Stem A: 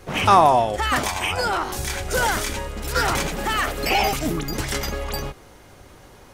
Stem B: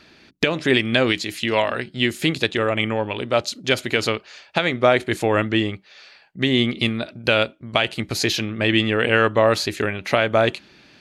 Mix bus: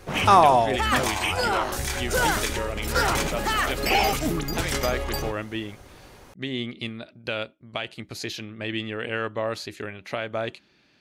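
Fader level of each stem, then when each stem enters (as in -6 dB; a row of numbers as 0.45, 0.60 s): -1.5, -11.5 dB; 0.00, 0.00 s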